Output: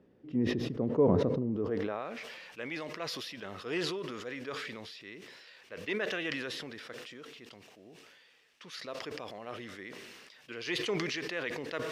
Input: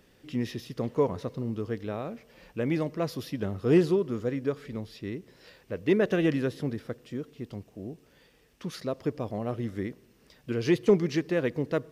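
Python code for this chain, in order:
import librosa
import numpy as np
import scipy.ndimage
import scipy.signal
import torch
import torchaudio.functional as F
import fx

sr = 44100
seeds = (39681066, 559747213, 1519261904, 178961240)

y = fx.filter_sweep_bandpass(x, sr, from_hz=290.0, to_hz=2700.0, start_s=1.49, end_s=2.18, q=0.73)
y = fx.sustainer(y, sr, db_per_s=27.0)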